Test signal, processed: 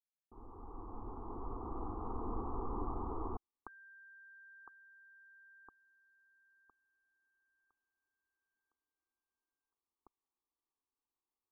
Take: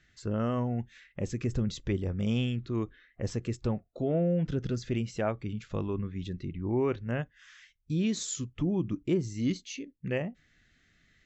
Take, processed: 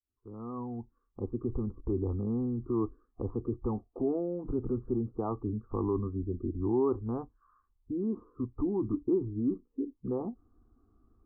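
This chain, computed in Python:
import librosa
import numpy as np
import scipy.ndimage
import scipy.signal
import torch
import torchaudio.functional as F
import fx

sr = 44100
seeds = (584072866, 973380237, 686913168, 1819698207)

p1 = fx.fade_in_head(x, sr, length_s=2.28)
p2 = fx.over_compress(p1, sr, threshold_db=-34.0, ratio=-1.0)
p3 = p1 + (p2 * librosa.db_to_amplitude(0.5))
p4 = scipy.signal.sosfilt(scipy.signal.cheby1(6, 1.0, 1200.0, 'lowpass', fs=sr, output='sos'), p3)
y = fx.fixed_phaser(p4, sr, hz=590.0, stages=6)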